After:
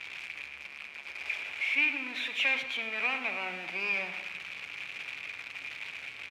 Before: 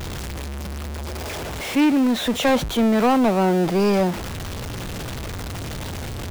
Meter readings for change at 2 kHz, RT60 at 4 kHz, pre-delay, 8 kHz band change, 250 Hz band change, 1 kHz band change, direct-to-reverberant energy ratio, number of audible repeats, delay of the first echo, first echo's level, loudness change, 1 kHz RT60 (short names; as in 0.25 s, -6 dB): +1.5 dB, 0.75 s, 7 ms, under -15 dB, -29.5 dB, -18.0 dB, 7.0 dB, 1, 0.102 s, -14.5 dB, -10.0 dB, 0.95 s